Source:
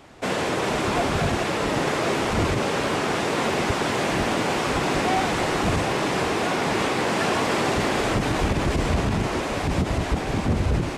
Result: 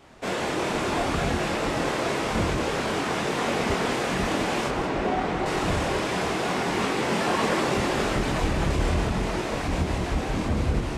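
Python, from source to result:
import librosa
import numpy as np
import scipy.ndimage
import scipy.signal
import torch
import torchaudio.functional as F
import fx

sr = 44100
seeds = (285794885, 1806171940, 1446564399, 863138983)

y = fx.lowpass(x, sr, hz=1700.0, slope=6, at=(4.68, 5.46))
y = fx.chorus_voices(y, sr, voices=6, hz=0.56, base_ms=25, depth_ms=3.3, mix_pct=45)
y = fx.vibrato(y, sr, rate_hz=4.8, depth_cents=14.0)
y = y + 10.0 ** (-9.0 / 20.0) * np.pad(y, (int(185 * sr / 1000.0), 0))[:len(y)]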